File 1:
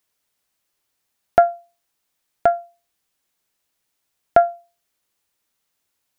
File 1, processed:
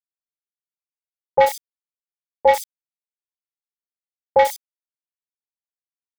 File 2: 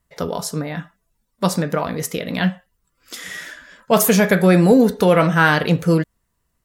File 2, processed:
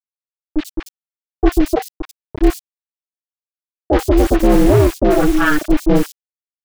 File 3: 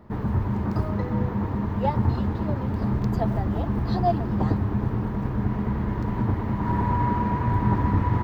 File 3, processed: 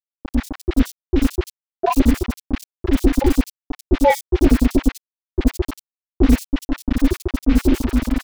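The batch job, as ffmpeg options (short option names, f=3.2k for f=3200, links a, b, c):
-filter_complex "[0:a]afftfilt=real='re*gte(hypot(re,im),0.562)':imag='im*gte(hypot(re,im),0.562)':win_size=1024:overlap=0.75,afwtdn=0.0562,highpass=f=81:w=0.5412,highpass=f=81:w=1.3066,afftfilt=real='re*gte(hypot(re,im),0.501)':imag='im*gte(hypot(re,im),0.501)':win_size=1024:overlap=0.75,equalizer=f=180:w=0.58:g=4,dynaudnorm=f=130:g=11:m=16dB,acrusher=bits=4:mix=0:aa=0.000001,asoftclip=type=tanh:threshold=-11.5dB,aeval=exprs='val(0)*sin(2*PI*150*n/s)':c=same,acrusher=bits=4:mode=log:mix=0:aa=0.000001,acrossover=split=910|4200[a][b][c];[b]adelay=30[d];[c]adelay=90[e];[a][d][e]amix=inputs=3:normalize=0,adynamicequalizer=threshold=0.00562:dfrequency=3400:dqfactor=0.7:tfrequency=3400:tqfactor=0.7:attack=5:release=100:ratio=0.375:range=1.5:mode=cutabove:tftype=highshelf,volume=7.5dB"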